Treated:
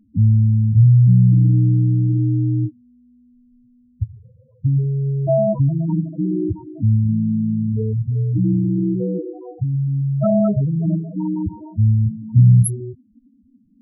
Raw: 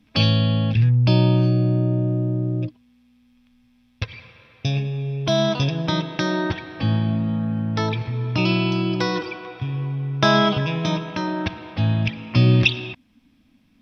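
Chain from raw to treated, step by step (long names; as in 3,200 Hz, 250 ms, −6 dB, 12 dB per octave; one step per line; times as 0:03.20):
samples in bit-reversed order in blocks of 16 samples
low-pass that shuts in the quiet parts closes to 1,200 Hz
spectral peaks only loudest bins 4
level +6 dB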